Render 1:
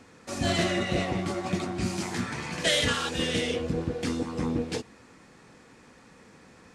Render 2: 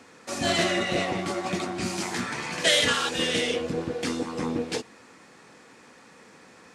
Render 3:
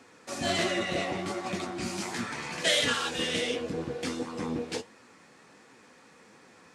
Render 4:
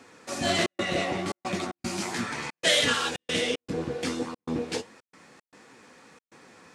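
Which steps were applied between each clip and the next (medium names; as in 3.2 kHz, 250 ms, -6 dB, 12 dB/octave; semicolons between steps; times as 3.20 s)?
high-pass 330 Hz 6 dB/octave; trim +4 dB
flange 1.4 Hz, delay 6.9 ms, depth 8 ms, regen +64%
trance gate "xxxxx.xxxx.xx." 114 bpm -60 dB; trim +3 dB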